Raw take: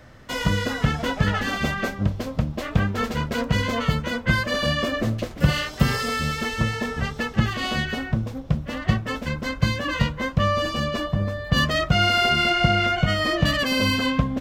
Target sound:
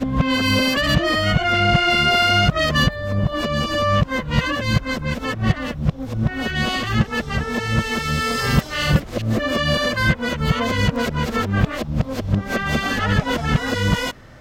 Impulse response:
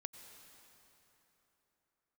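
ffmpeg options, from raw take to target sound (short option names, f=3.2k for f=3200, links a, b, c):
-af "areverse,acontrast=80,volume=-3dB"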